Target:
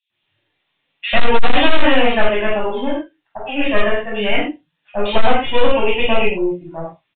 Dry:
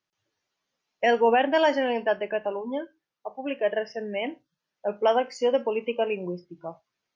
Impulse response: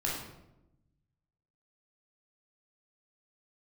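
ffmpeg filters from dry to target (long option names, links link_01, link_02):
-filter_complex "[0:a]aexciter=amount=3.8:drive=5.1:freq=2100,aeval=exprs='0.562*(cos(1*acos(clip(val(0)/0.562,-1,1)))-cos(1*PI/2))+0.0126*(cos(2*acos(clip(val(0)/0.562,-1,1)))-cos(2*PI/2))+0.2*(cos(4*acos(clip(val(0)/0.562,-1,1)))-cos(4*PI/2))+0.0355*(cos(5*acos(clip(val(0)/0.562,-1,1)))-cos(5*PI/2))':channel_layout=same,acrossover=split=3000[link_01][link_02];[link_01]adelay=100[link_03];[link_03][link_02]amix=inputs=2:normalize=0[link_04];[1:a]atrim=start_sample=2205,afade=type=out:start_time=0.18:duration=0.01,atrim=end_sample=8379[link_05];[link_04][link_05]afir=irnorm=-1:irlink=0,aresample=8000,asoftclip=type=hard:threshold=-4.5dB,aresample=44100,volume=1dB"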